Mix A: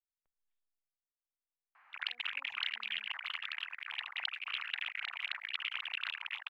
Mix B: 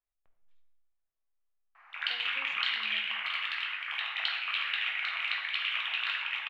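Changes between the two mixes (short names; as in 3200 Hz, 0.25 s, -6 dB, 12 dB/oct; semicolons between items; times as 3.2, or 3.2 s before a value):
speech +11.0 dB; reverb: on, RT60 1.1 s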